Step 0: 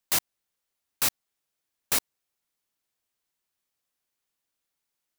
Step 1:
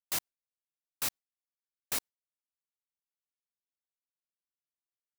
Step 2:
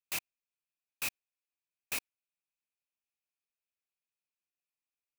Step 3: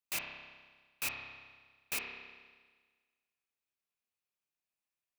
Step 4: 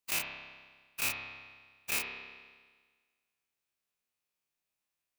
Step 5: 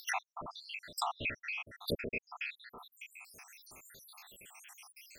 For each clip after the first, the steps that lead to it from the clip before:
gate with hold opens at -25 dBFS; trim -8 dB
peaking EQ 2.5 kHz +15 dB 0.27 oct; trim -4.5 dB
spring tank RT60 1.5 s, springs 30 ms, chirp 40 ms, DRR 1 dB; trim -1 dB
every event in the spectrogram widened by 60 ms
random holes in the spectrogram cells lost 84%; upward compressor, threshold -50 dBFS; low-pass that closes with the level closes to 810 Hz, closed at -39.5 dBFS; trim +16.5 dB

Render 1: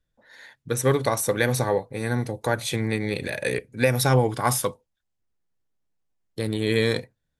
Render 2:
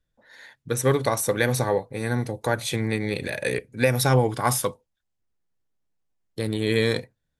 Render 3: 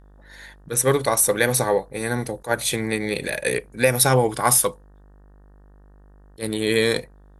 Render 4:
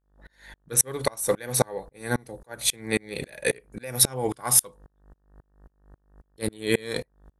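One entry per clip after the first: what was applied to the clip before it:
no audible change
mains buzz 50 Hz, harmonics 37, -51 dBFS -7 dB/octave; fifteen-band graphic EQ 100 Hz -10 dB, 250 Hz -3 dB, 10 kHz +8 dB; attacks held to a fixed rise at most 340 dB/s; trim +3.5 dB
sawtooth tremolo in dB swelling 3.7 Hz, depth 33 dB; trim +3.5 dB

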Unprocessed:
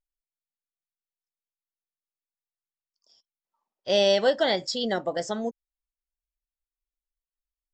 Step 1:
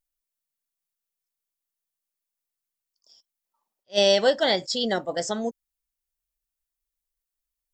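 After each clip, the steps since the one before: treble shelf 6.3 kHz +10 dB; attacks held to a fixed rise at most 450 dB/s; trim +1.5 dB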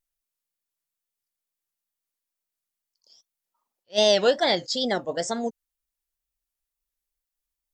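wow and flutter 130 cents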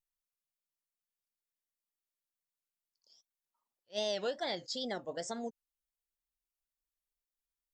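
compression 2:1, threshold -28 dBFS, peak gain reduction 7.5 dB; trim -9 dB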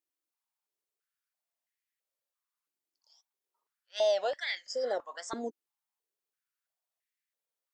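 spectral replace 4.68–4.91 s, 1–4.7 kHz both; step-sequenced high-pass 3 Hz 310–1900 Hz

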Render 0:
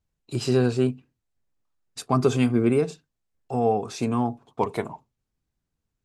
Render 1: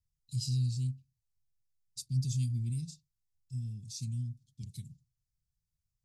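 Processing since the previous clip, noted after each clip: elliptic band-stop 140–4700 Hz, stop band 60 dB; trim -3.5 dB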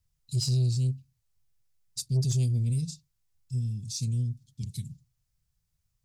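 saturation -28.5 dBFS, distortion -16 dB; trim +8.5 dB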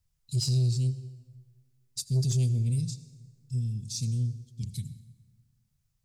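reverberation RT60 1.7 s, pre-delay 68 ms, DRR 15 dB

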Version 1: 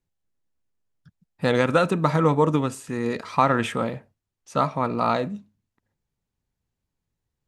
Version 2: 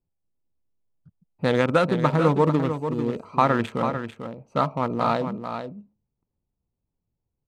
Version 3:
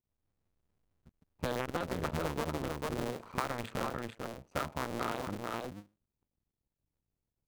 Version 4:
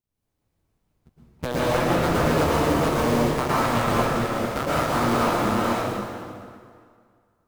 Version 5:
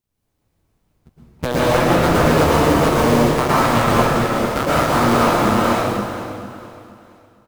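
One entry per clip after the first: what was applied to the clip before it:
local Wiener filter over 25 samples; delay 445 ms -8.5 dB
cycle switcher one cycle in 2, muted; compression 6:1, threshold -27 dBFS, peak gain reduction 12 dB; trim -3.5 dB
waveshaping leveller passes 1; plate-style reverb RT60 2.1 s, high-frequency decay 0.8×, pre-delay 100 ms, DRR -8.5 dB; trim +2.5 dB
feedback delay 465 ms, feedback 39%, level -16.5 dB; trim +6.5 dB

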